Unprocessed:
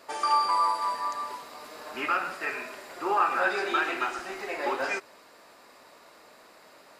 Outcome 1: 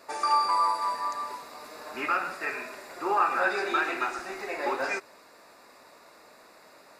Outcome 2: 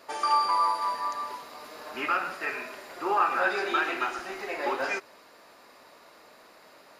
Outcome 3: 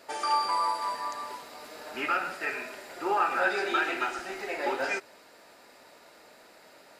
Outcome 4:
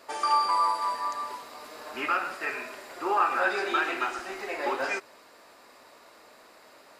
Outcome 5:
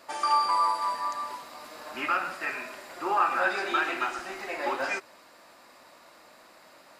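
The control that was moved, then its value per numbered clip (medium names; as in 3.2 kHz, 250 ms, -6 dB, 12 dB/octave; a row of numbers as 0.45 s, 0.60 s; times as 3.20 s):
band-stop, frequency: 3.1 kHz, 8 kHz, 1.1 kHz, 170 Hz, 430 Hz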